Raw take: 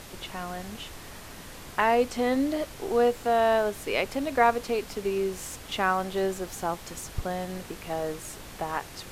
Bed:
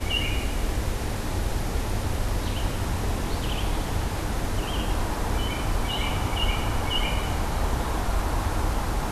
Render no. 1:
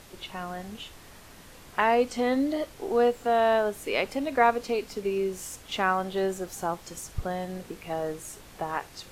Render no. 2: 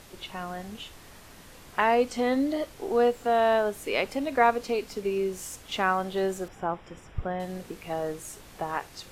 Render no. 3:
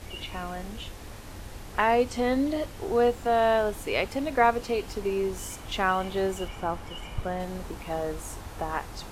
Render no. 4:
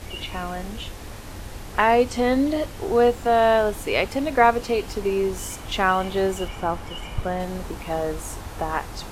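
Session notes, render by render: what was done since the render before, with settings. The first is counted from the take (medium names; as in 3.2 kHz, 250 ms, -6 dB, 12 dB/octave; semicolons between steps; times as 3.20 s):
noise print and reduce 6 dB
6.48–7.40 s: Savitzky-Golay filter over 25 samples
add bed -15 dB
trim +5 dB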